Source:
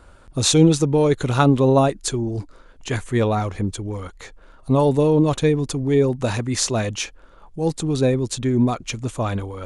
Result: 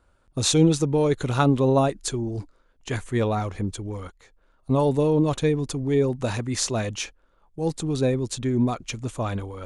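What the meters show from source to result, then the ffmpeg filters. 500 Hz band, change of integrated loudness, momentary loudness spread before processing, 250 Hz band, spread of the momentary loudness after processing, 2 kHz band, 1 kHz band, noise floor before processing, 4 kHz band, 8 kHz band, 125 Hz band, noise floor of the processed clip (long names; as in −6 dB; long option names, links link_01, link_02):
−4.0 dB, −4.0 dB, 14 LU, −4.0 dB, 13 LU, −4.0 dB, −4.0 dB, −48 dBFS, −4.0 dB, −4.0 dB, −4.0 dB, −63 dBFS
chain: -af "agate=range=-11dB:threshold=-34dB:ratio=16:detection=peak,volume=-4dB"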